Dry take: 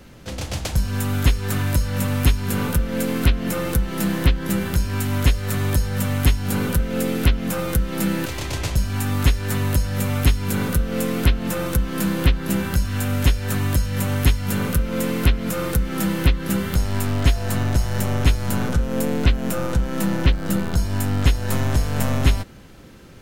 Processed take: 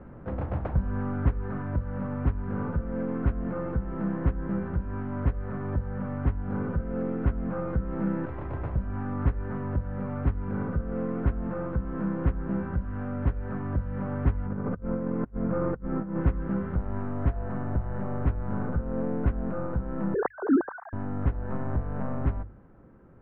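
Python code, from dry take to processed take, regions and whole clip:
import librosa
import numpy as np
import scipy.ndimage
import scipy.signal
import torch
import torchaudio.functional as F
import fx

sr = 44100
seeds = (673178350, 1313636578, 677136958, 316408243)

y = fx.chain(x, sr, fx.high_shelf(hz=2100.0, db=-10.5),
    fx.over_compress(threshold_db=-25.0, ratio=-0.5), at=(14.46, 16.21))
y = fx.chain(y, sr, fx.sine_speech(),
    fx.steep_lowpass(hz=1800.0, slope=48), at=(20.14, 20.93))
y = fx.rider(y, sr, range_db=10, speed_s=2.0)
y = scipy.signal.sosfilt(scipy.signal.butter(4, 1400.0, 'lowpass', fs=sr, output='sos'), y)
y = fx.hum_notches(y, sr, base_hz=50, count=2)
y = F.gain(torch.from_numpy(y), -7.0).numpy()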